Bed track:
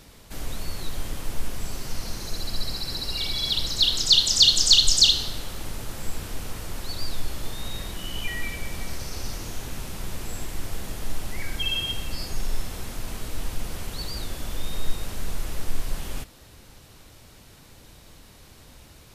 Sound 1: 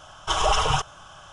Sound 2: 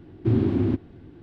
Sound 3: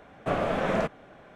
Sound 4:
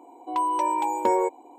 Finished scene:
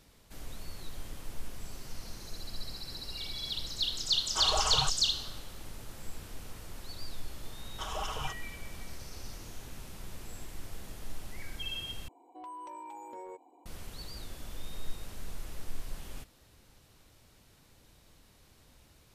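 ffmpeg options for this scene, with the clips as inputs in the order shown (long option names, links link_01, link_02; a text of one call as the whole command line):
ffmpeg -i bed.wav -i cue0.wav -i cue1.wav -i cue2.wav -i cue3.wav -filter_complex "[1:a]asplit=2[link_01][link_02];[0:a]volume=-11.5dB[link_03];[4:a]acompressor=threshold=-30dB:ratio=4:attack=0.14:release=55:knee=6:detection=peak[link_04];[link_03]asplit=2[link_05][link_06];[link_05]atrim=end=12.084[link_07];[link_04]atrim=end=1.58,asetpts=PTS-STARTPTS,volume=-12dB[link_08];[link_06]atrim=start=13.656[link_09];[link_01]atrim=end=1.32,asetpts=PTS-STARTPTS,volume=-10dB,afade=type=in:duration=0.004:curve=hsin,afade=type=out:start_time=1.316:duration=0.004:curve=hsin,adelay=4080[link_10];[link_02]atrim=end=1.32,asetpts=PTS-STARTPTS,volume=-16dB,afade=type=in:duration=0.004:curve=hsin,afade=type=out:start_time=1.316:duration=0.004:curve=hsin,adelay=7510[link_11];[link_07][link_08]acrossfade=duration=0.004:curve1=hsin:curve2=hsin[link_12];[link_12][link_09]acrossfade=duration=0.004:curve1=hsin:curve2=hsin[link_13];[link_13][link_10][link_11]amix=inputs=3:normalize=0" out.wav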